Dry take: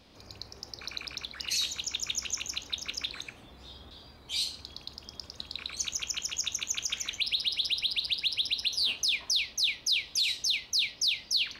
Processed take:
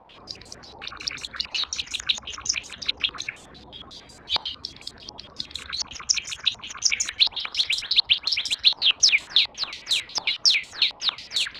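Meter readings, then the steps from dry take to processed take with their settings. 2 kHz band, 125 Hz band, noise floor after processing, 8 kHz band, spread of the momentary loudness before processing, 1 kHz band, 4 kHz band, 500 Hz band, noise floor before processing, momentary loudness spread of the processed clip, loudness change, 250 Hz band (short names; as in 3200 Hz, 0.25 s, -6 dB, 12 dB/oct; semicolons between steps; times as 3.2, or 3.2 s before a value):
+8.0 dB, +3.5 dB, -49 dBFS, +4.5 dB, 16 LU, +12.5 dB, +7.0 dB, +7.0 dB, -53 dBFS, 20 LU, +7.0 dB, +5.0 dB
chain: bin magnitudes rounded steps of 30 dB; companded quantiser 4-bit; stepped low-pass 11 Hz 900–7600 Hz; gain +3.5 dB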